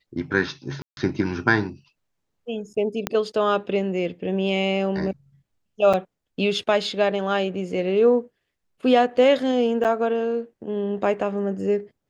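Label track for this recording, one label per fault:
0.820000	0.970000	gap 0.151 s
3.070000	3.070000	pop -8 dBFS
5.930000	5.940000	gap 6.1 ms
9.840000	9.850000	gap 7.9 ms

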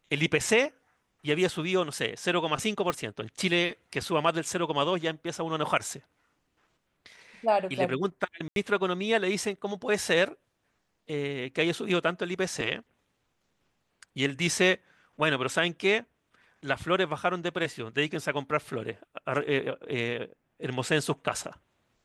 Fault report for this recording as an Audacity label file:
2.900000	2.900000	pop -14 dBFS
8.480000	8.560000	gap 82 ms

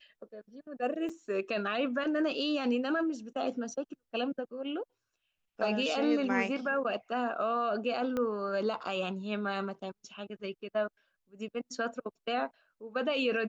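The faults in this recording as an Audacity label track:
1.090000	1.100000	gap 5.1 ms
8.170000	8.170000	pop -21 dBFS

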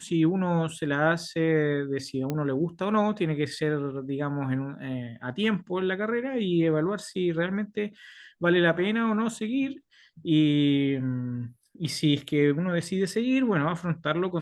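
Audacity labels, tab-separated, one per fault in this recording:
2.300000	2.300000	pop -16 dBFS

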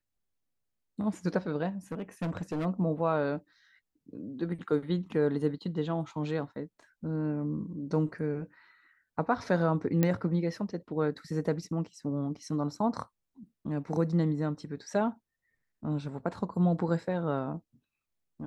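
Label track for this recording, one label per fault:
1.920000	2.660000	clipped -29 dBFS
10.030000	10.030000	pop -13 dBFS

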